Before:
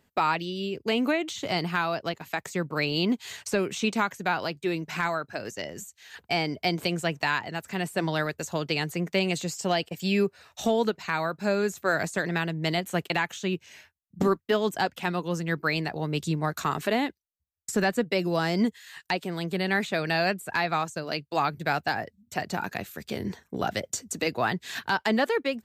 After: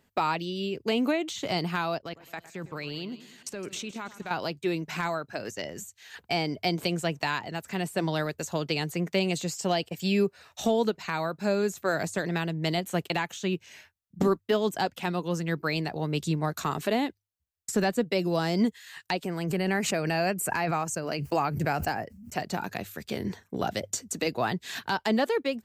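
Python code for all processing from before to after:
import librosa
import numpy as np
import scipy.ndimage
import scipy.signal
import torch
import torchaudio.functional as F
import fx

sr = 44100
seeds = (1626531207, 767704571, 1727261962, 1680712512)

y = fx.chain(x, sr, fx.level_steps(step_db=18),
    fx.echo_split(split_hz=2300.0, low_ms=108, high_ms=163, feedback_pct=52, wet_db=-15.5), at=(1.97, 4.31))
y = fx.chain(y, sr, fx.peak_eq(hz=3900.0, db=-10.0, octaves=0.3),
    fx.notch(hz=3500.0, q=5.4),
    fx.pre_swell(db_per_s=45.0), at=(19.24, 22.34))
y = fx.hum_notches(y, sr, base_hz=50, count=2)
y = fx.dynamic_eq(y, sr, hz=1700.0, q=1.0, threshold_db=-37.0, ratio=4.0, max_db=-5)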